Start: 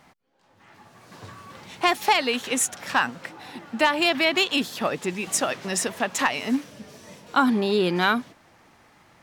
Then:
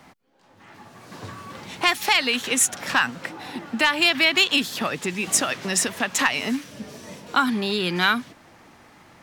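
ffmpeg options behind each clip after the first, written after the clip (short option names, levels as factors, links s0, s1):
-filter_complex "[0:a]acrossover=split=140|1200[s0][s1][s2];[s1]acompressor=threshold=0.0224:ratio=6[s3];[s0][s3][s2]amix=inputs=3:normalize=0,equalizer=f=270:w=1.4:g=3,volume=1.68"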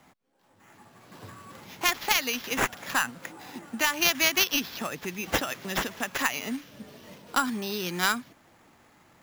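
-af "acrusher=samples=5:mix=1:aa=0.000001,aeval=exprs='0.668*(cos(1*acos(clip(val(0)/0.668,-1,1)))-cos(1*PI/2))+0.133*(cos(3*acos(clip(val(0)/0.668,-1,1)))-cos(3*PI/2))':c=same"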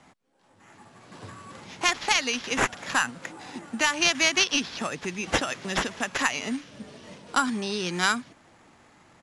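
-filter_complex "[0:a]asplit=2[s0][s1];[s1]asoftclip=type=tanh:threshold=0.178,volume=0.501[s2];[s0][s2]amix=inputs=2:normalize=0,aresample=22050,aresample=44100,volume=0.891"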